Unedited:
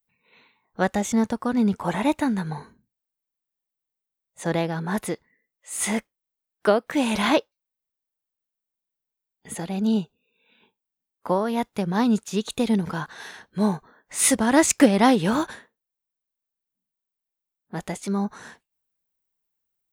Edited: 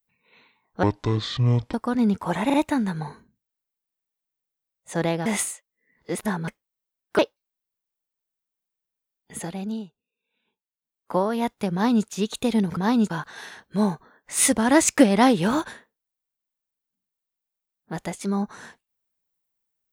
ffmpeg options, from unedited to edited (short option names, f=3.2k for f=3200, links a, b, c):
-filter_complex "[0:a]asplit=12[a][b][c][d][e][f][g][h][i][j][k][l];[a]atrim=end=0.834[m];[b]atrim=start=0.83:end=1.32,asetpts=PTS-STARTPTS,asetrate=23814,aresample=44100[n];[c]atrim=start=1.316:end=2.082[o];[d]atrim=start=2.038:end=2.082[p];[e]atrim=start=2.038:end=4.762[q];[f]atrim=start=4.758:end=5.982,asetpts=PTS-STARTPTS,areverse[r];[g]atrim=start=5.978:end=6.692[s];[h]atrim=start=7.338:end=9.99,asetpts=PTS-STARTPTS,afade=t=out:st=2.222:d=0.43:silence=0.188365[t];[i]atrim=start=9.99:end=10.86,asetpts=PTS-STARTPTS,volume=-14.5dB[u];[j]atrim=start=10.86:end=12.922,asetpts=PTS-STARTPTS,afade=t=in:d=0.43:silence=0.188365[v];[k]atrim=start=11.878:end=12.212[w];[l]atrim=start=12.918[x];[m][n]acrossfade=d=0.004:c1=hsin:c2=hsin[y];[y][o]acrossfade=d=0.004:c1=hsin:c2=hsin[z];[z][p]acrossfade=d=0.004:c1=hsin:c2=hsin[aa];[aa][q]acrossfade=d=0.004:c1=hsin:c2=hsin[ab];[ab][r]acrossfade=d=0.004:c1=hsin:c2=hsin[ac];[ac][s]acrossfade=d=0.004:c1=hsin:c2=hsin[ad];[t][u][v]concat=n=3:v=0:a=1[ae];[ad][ae]acrossfade=d=0.004:c1=hsin:c2=hsin[af];[af][w]acrossfade=d=0.004:c1=hsin:c2=hsin[ag];[ag][x]acrossfade=d=0.004:c1=hsin:c2=hsin"